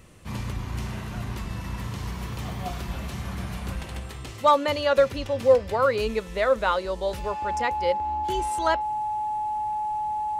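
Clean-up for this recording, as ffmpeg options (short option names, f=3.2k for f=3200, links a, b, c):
-af "bandreject=f=850:w=30"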